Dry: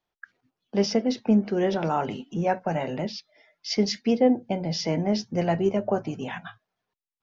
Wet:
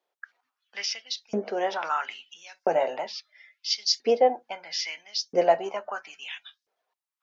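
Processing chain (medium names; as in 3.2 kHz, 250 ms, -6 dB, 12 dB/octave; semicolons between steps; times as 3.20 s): LFO high-pass saw up 0.75 Hz 420–5600 Hz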